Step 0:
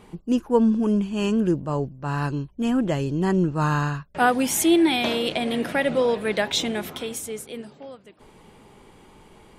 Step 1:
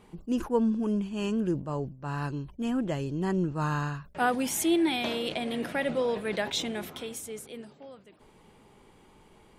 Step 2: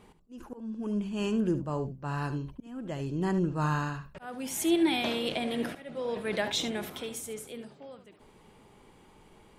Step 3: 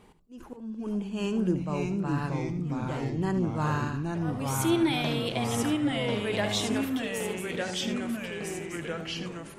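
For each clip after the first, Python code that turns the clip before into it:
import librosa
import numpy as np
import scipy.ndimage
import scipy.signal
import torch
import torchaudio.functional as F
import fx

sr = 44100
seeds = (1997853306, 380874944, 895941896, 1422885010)

y1 = fx.sustainer(x, sr, db_per_s=140.0)
y1 = F.gain(torch.from_numpy(y1), -7.0).numpy()
y2 = fx.auto_swell(y1, sr, attack_ms=590.0)
y2 = y2 + 10.0 ** (-12.0 / 20.0) * np.pad(y2, (int(72 * sr / 1000.0), 0))[:len(y2)]
y3 = fx.echo_pitch(y2, sr, ms=425, semitones=-2, count=3, db_per_echo=-3.0)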